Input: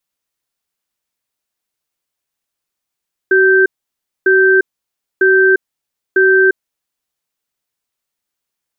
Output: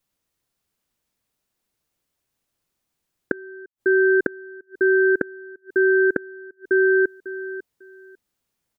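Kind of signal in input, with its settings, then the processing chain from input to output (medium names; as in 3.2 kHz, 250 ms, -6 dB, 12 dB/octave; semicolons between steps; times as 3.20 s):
cadence 380 Hz, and 1.56 kHz, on 0.35 s, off 0.60 s, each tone -9.5 dBFS 3.42 s
bass shelf 470 Hz +10 dB; on a send: feedback delay 548 ms, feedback 19%, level -11 dB; on the sum: inverted gate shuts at -7 dBFS, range -33 dB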